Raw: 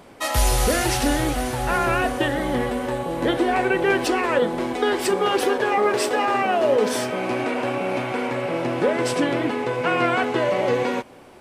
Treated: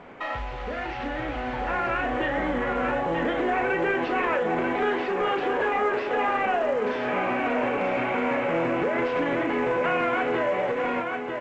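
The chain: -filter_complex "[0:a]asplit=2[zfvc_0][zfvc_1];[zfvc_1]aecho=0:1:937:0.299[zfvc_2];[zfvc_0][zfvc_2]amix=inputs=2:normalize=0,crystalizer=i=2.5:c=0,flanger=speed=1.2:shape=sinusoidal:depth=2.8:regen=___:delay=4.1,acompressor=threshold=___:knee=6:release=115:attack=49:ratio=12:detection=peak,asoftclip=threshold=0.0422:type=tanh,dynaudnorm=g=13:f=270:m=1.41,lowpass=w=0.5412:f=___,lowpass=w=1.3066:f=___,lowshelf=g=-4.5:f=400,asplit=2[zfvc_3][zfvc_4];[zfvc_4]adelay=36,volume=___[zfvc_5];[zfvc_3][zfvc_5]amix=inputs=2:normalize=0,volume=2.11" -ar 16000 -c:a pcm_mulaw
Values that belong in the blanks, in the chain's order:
-72, 0.0282, 2.4k, 2.4k, 0.422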